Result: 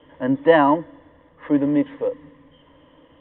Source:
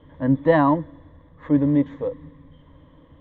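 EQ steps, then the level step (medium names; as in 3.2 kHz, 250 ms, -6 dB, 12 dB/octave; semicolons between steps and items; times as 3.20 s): resonant low-pass 2.9 kHz, resonance Q 7.1; three-band isolator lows -14 dB, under 270 Hz, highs -12 dB, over 2 kHz; band-stop 1.1 kHz, Q 15; +3.5 dB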